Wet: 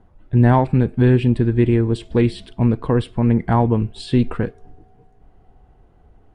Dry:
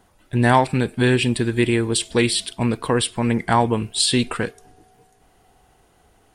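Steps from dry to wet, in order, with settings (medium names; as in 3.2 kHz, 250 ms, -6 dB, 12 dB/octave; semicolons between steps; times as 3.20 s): low-pass 2.2 kHz 6 dB/octave; tilt EQ -3 dB/octave; trim -2.5 dB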